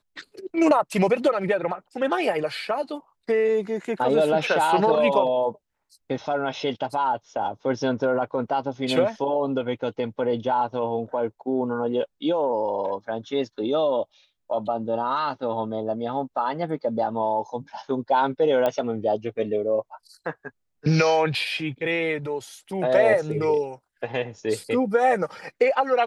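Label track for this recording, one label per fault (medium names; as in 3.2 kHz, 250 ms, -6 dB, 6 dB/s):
18.660000	18.660000	pop -12 dBFS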